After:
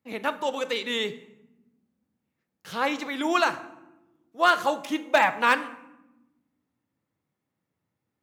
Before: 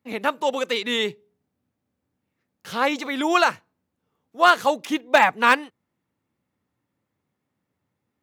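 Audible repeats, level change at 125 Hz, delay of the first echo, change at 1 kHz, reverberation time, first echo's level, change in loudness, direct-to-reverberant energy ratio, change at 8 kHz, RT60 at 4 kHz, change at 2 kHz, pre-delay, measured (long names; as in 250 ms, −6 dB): no echo audible, can't be measured, no echo audible, −4.5 dB, 1.0 s, no echo audible, −4.0 dB, 10.5 dB, −4.5 dB, 0.60 s, −4.0 dB, 6 ms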